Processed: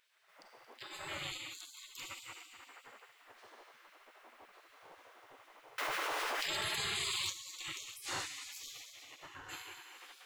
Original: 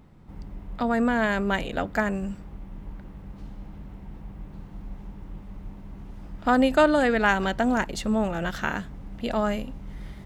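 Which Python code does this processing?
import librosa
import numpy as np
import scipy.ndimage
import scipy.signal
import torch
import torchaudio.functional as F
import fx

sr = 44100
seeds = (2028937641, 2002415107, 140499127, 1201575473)

p1 = fx.spec_expand(x, sr, power=3.2, at=(8.7, 9.48), fade=0.02)
p2 = p1 + fx.echo_split(p1, sr, split_hz=1100.0, low_ms=107, high_ms=226, feedback_pct=52, wet_db=-12, dry=0)
p3 = fx.rev_schroeder(p2, sr, rt60_s=1.8, comb_ms=33, drr_db=1.5)
p4 = fx.spec_gate(p3, sr, threshold_db=-30, keep='weak')
p5 = fx.env_flatten(p4, sr, amount_pct=100, at=(5.78, 7.3))
y = p5 * 10.0 ** (-1.0 / 20.0)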